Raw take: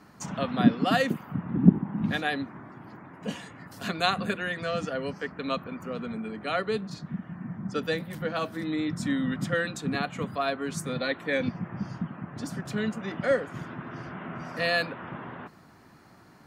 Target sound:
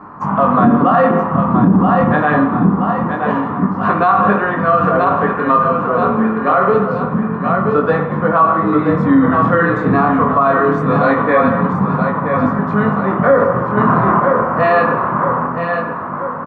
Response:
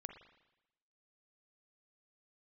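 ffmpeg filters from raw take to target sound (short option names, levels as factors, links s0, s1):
-filter_complex "[0:a]lowpass=f=1100:t=q:w=4.5,aecho=1:1:975|1950|2925|3900|4875|5850:0.447|0.214|0.103|0.0494|0.0237|0.0114,flanger=delay=19.5:depth=7:speed=0.24,asettb=1/sr,asplit=3[s0][s1][s2];[s0]atrim=end=9.154[s3];[s1]atrim=start=9.15:end=9.94,asetpts=PTS-STARTPTS,afade=t=in:d=0.004:c=qsin,afade=t=out:st=0.786:d=0.004:c=qsin,asplit=2[s4][s5];[s5]adelay=41,volume=0.473[s6];[s4][s6]amix=inputs=2:normalize=0,atrim=end_sample=34839[s7];[s2]atrim=start=9.936[s8];[s3][s7]acrossfade=d=0.004:c1=hsin:c2=qsin[s9];[s9][s8]acrossfade=d=0.004:c1=qsin:c2=hsin,asettb=1/sr,asplit=3[s10][s11][s12];[s10]atrim=end=10.864[s13];[s11]atrim=start=10.86:end=11.73,asetpts=PTS-STARTPTS,afade=t=in:d=0.004:c=qsin,afade=t=out:st=0.866:d=0.004:c=qsin,aemphasis=mode=production:type=cd[s14];[s12]atrim=start=11.726[s15];[s13][s14]acrossfade=d=0.004:c1=hsin:c2=qsin[s16];[s16][s15]acrossfade=d=0.004:c1=qsin:c2=hsin,asettb=1/sr,asplit=3[s17][s18][s19];[s17]atrim=end=13.774[s20];[s18]atrim=start=13.77:end=14.2,asetpts=PTS-STARTPTS,afade=t=in:d=0.004:c=qsin,afade=t=out:st=0.426:d=0.004:c=qsin,acontrast=83[s21];[s19]atrim=start=14.196[s22];[s20][s21]acrossfade=d=0.004:c1=hsin:c2=qsin[s23];[s23][s22]acrossfade=d=0.004:c1=qsin:c2=hsin[s24];[1:a]atrim=start_sample=2205[s25];[s24][s25]afir=irnorm=-1:irlink=0,alimiter=level_in=17.8:limit=0.891:release=50:level=0:latency=1,volume=0.794"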